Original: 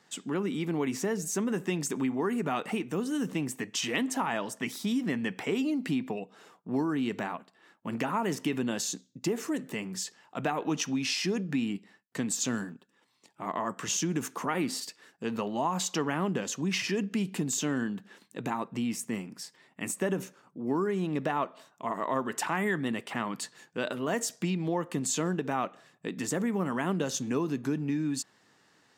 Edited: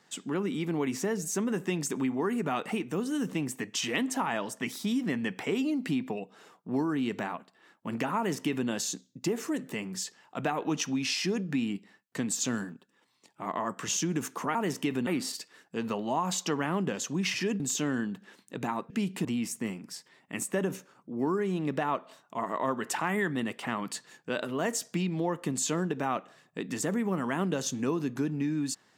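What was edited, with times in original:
8.17–8.69 copy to 14.55
17.08–17.43 move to 18.73

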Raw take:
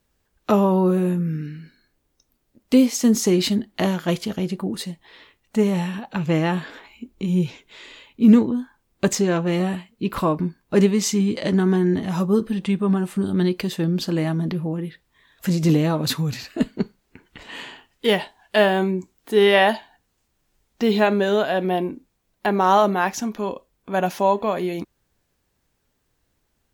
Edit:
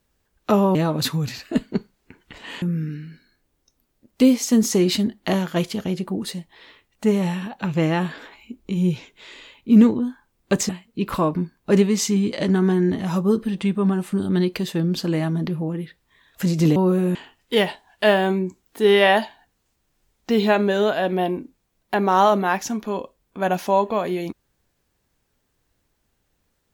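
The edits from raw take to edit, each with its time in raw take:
0.75–1.14 swap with 15.8–17.67
9.21–9.73 cut

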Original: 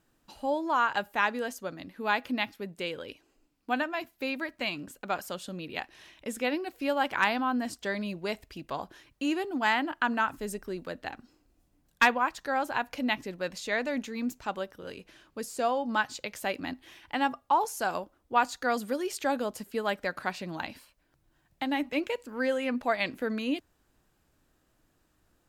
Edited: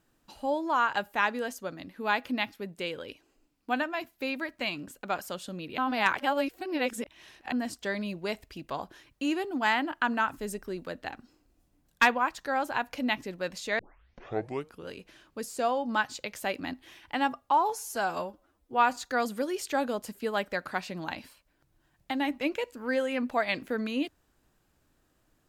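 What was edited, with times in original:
5.78–7.52 reverse
13.79 tape start 1.09 s
17.51–18.48 stretch 1.5×

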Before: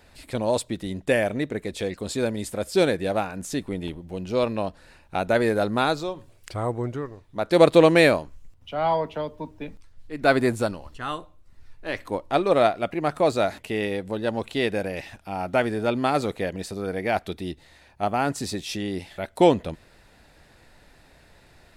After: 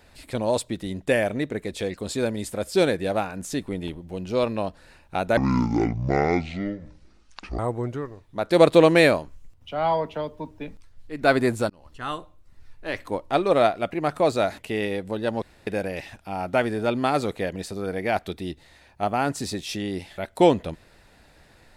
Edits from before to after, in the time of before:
5.37–6.59 speed 55%
10.7–11.07 fade in
14.42–14.67 room tone

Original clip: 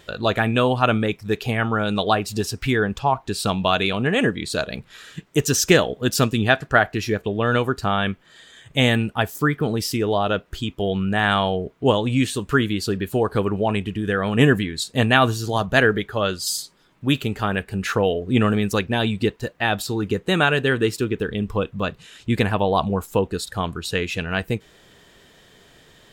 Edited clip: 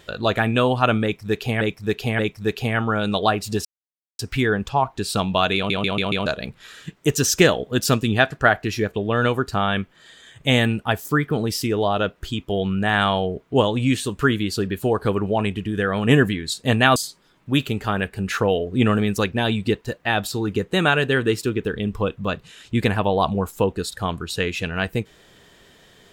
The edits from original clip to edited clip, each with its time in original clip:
1.03–1.61 loop, 3 plays
2.49 insert silence 0.54 s
3.86 stutter in place 0.14 s, 5 plays
15.26–16.51 cut

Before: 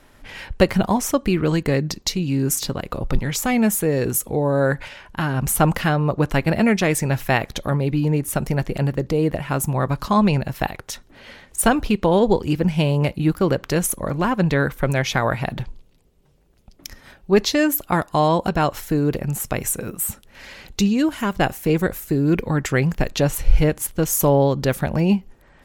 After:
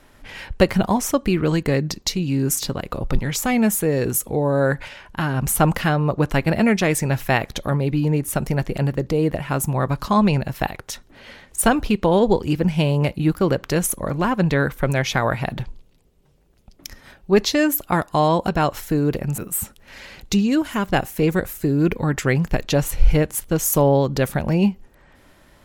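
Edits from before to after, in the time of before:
19.38–19.85 cut

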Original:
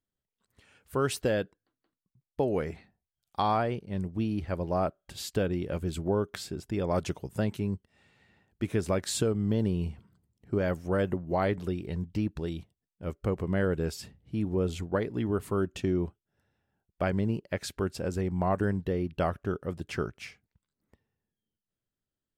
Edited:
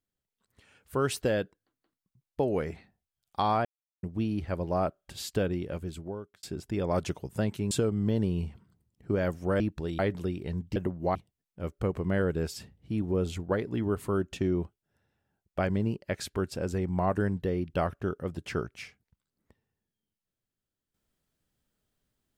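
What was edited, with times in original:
3.65–4.03 mute
5.46–6.43 fade out
7.71–9.14 cut
11.03–11.42 swap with 12.19–12.58

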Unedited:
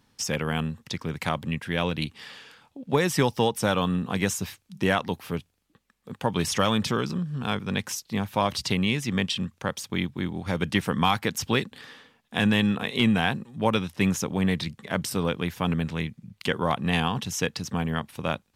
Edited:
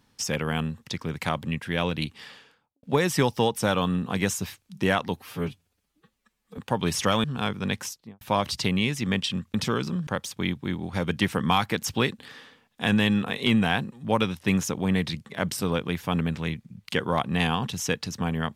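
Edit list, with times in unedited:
2.17–2.83 studio fade out
5.17–6.11 stretch 1.5×
6.77–7.3 move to 9.6
7.86–8.27 studio fade out

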